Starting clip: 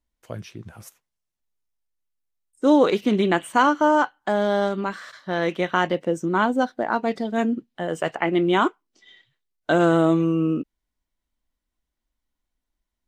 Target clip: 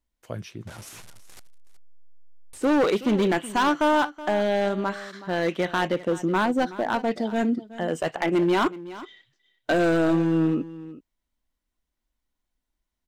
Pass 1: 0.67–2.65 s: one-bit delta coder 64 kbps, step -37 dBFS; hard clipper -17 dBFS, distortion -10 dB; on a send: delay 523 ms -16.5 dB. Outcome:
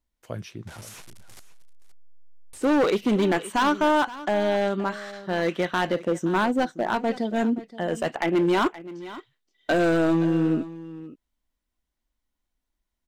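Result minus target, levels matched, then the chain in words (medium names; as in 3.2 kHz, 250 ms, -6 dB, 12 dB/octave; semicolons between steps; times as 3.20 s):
echo 150 ms late
0.67–2.65 s: one-bit delta coder 64 kbps, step -37 dBFS; hard clipper -17 dBFS, distortion -10 dB; on a send: delay 373 ms -16.5 dB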